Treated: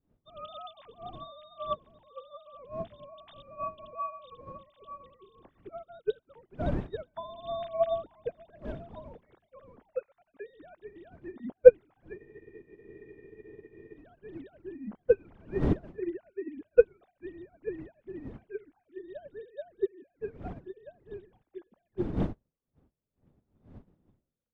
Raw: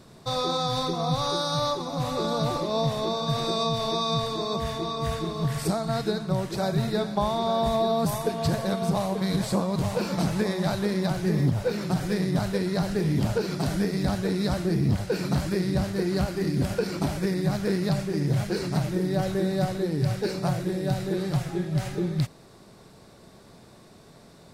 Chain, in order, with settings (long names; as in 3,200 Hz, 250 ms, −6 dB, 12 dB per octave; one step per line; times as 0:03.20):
three sine waves on the formant tracks
wind on the microphone 240 Hz −32 dBFS
frozen spectrum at 0:12.19, 1.78 s
expander for the loud parts 2.5 to 1, over −41 dBFS
level +3 dB